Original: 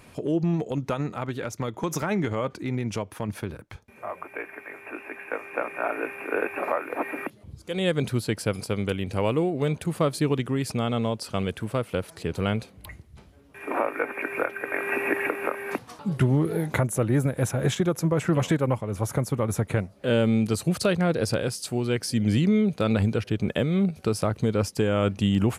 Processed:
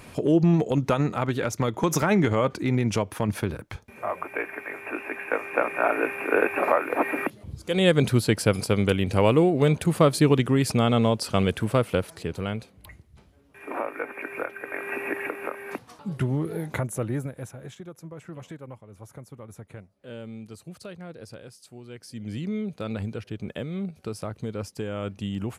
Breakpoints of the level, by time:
0:11.87 +5 dB
0:12.46 −4.5 dB
0:17.06 −4.5 dB
0:17.67 −17.5 dB
0:21.86 −17.5 dB
0:22.54 −8.5 dB

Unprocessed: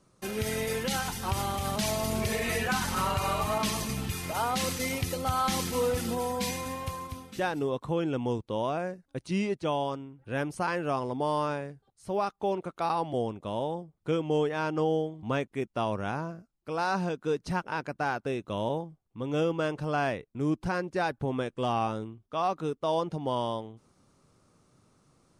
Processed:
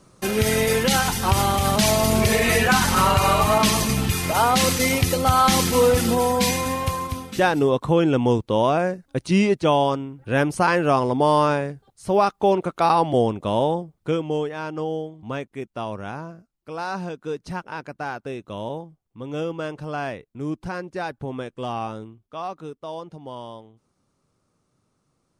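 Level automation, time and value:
0:13.71 +11 dB
0:14.53 0 dB
0:22.02 0 dB
0:23.02 −6 dB

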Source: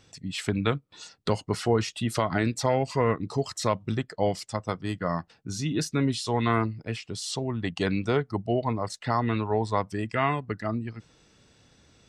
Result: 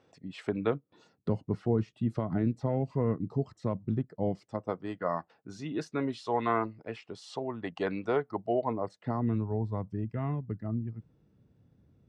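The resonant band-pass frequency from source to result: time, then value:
resonant band-pass, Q 0.83
0:00.60 540 Hz
0:01.31 180 Hz
0:04.22 180 Hz
0:04.96 710 Hz
0:08.53 710 Hz
0:09.45 130 Hz

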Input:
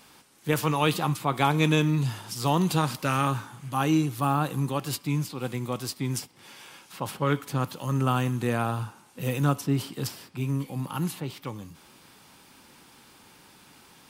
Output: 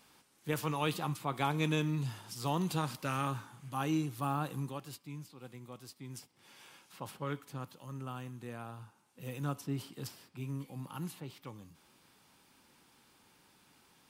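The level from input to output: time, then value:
0:04.56 −9.5 dB
0:05.00 −18 dB
0:06.03 −18 dB
0:06.65 −9 dB
0:08.05 −18 dB
0:08.79 −18 dB
0:09.62 −11.5 dB

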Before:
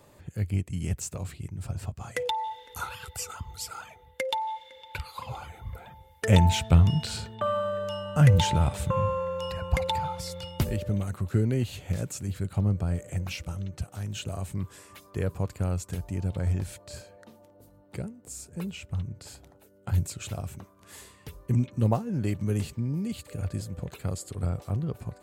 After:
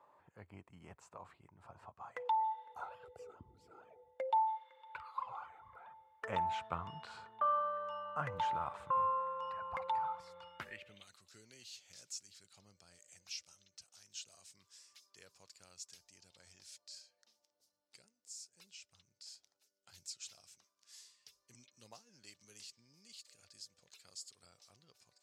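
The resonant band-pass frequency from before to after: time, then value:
resonant band-pass, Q 3.5
0:02.57 990 Hz
0:03.57 280 Hz
0:04.53 1,100 Hz
0:10.45 1,100 Hz
0:11.22 5,300 Hz

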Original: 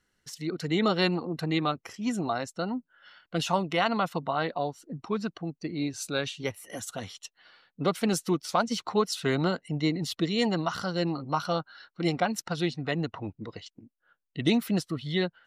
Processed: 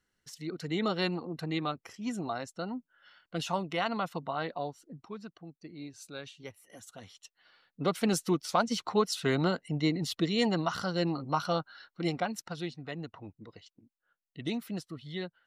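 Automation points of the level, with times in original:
0:04.76 −5.5 dB
0:05.16 −13 dB
0:06.85 −13 dB
0:08.01 −1.5 dB
0:11.73 −1.5 dB
0:12.83 −10 dB

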